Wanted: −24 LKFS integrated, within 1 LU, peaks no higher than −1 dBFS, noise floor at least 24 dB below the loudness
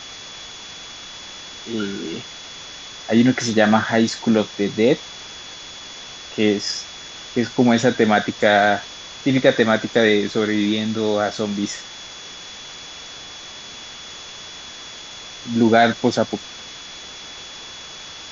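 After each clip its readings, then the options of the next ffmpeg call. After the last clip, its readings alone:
interfering tone 3,400 Hz; level of the tone −38 dBFS; background noise floor −37 dBFS; target noise floor −43 dBFS; integrated loudness −19.0 LKFS; sample peak −1.0 dBFS; target loudness −24.0 LKFS
→ -af "bandreject=frequency=3400:width=30"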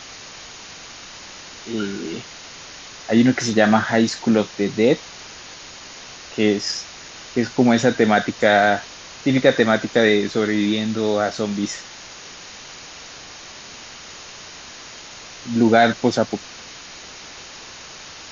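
interfering tone none found; background noise floor −39 dBFS; target noise floor −43 dBFS
→ -af "afftdn=noise_reduction=6:noise_floor=-39"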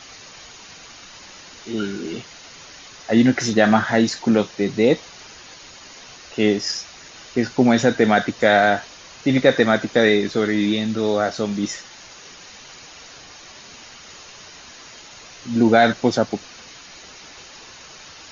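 background noise floor −43 dBFS; integrated loudness −19.0 LKFS; sample peak −1.5 dBFS; target loudness −24.0 LKFS
→ -af "volume=-5dB"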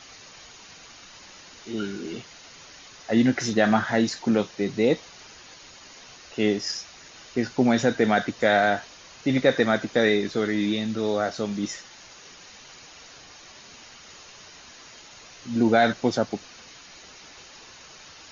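integrated loudness −24.0 LKFS; sample peak −6.5 dBFS; background noise floor −48 dBFS

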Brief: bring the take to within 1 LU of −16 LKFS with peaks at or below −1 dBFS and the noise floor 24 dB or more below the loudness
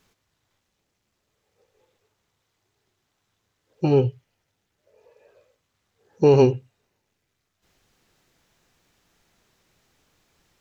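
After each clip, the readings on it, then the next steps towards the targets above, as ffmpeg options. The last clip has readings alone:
integrated loudness −20.0 LKFS; sample peak −4.0 dBFS; target loudness −16.0 LKFS
→ -af "volume=4dB,alimiter=limit=-1dB:level=0:latency=1"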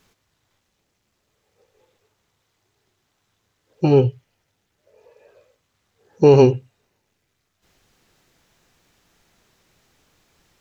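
integrated loudness −16.0 LKFS; sample peak −1.0 dBFS; background noise floor −72 dBFS

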